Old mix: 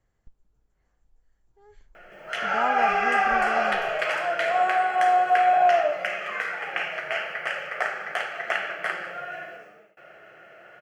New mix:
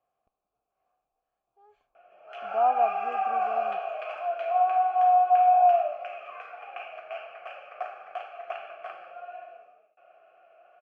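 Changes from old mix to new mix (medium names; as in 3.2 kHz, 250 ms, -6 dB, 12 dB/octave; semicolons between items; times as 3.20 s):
speech +9.5 dB; master: add vowel filter a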